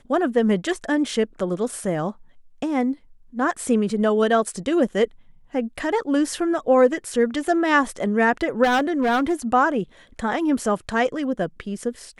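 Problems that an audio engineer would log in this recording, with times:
8.63–9.34 clipped -16 dBFS

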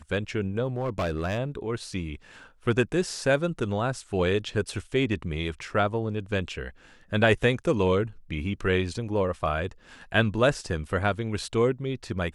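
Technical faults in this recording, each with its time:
0.68–1.39 clipped -23.5 dBFS

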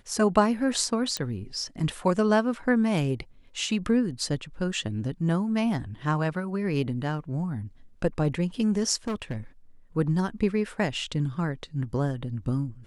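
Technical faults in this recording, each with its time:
1.17 pop -14 dBFS
9.07–9.36 clipped -26 dBFS

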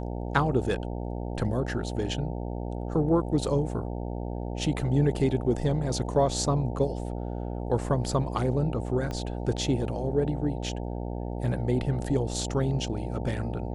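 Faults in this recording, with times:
buzz 60 Hz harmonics 15 -33 dBFS
9.11 pop -21 dBFS

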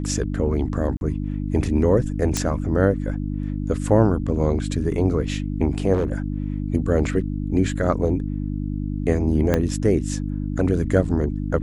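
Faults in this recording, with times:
hum 50 Hz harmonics 6 -26 dBFS
0.97–1.01 gap 41 ms
2.37 pop -7 dBFS
5.93–6.14 clipped -16.5 dBFS
9.54 pop -7 dBFS

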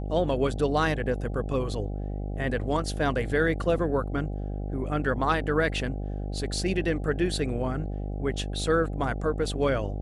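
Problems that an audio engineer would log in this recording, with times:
buzz 50 Hz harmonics 16 -32 dBFS

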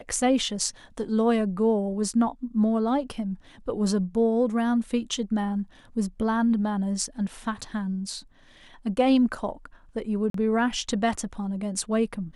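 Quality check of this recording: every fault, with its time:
10.3–10.34 gap 43 ms

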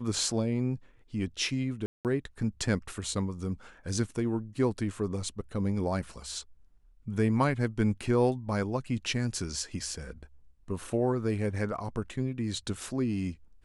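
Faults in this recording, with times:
1.86–2.05 gap 0.188 s

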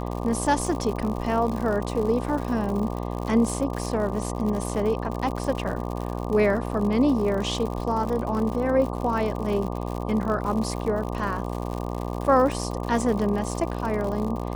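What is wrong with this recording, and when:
buzz 60 Hz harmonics 20 -30 dBFS
crackle 100/s -30 dBFS

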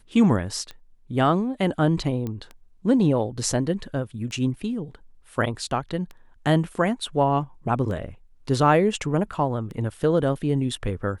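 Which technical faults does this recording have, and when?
tick 33 1/3 rpm -24 dBFS
2.27 pop -19 dBFS

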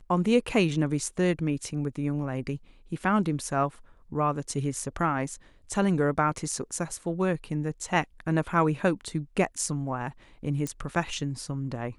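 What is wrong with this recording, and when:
10.67 pop -18 dBFS

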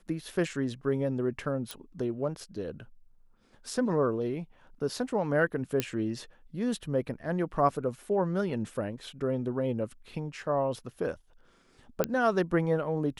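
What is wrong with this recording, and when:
1.71 pop
5.8 pop -12 dBFS
12.04 pop -11 dBFS

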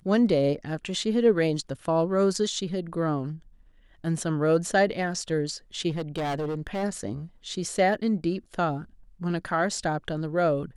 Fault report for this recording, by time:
5.89–6.84 clipped -26 dBFS

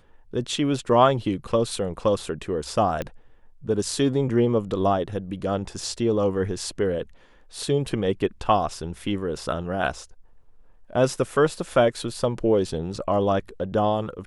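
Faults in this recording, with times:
3.02 pop -15 dBFS

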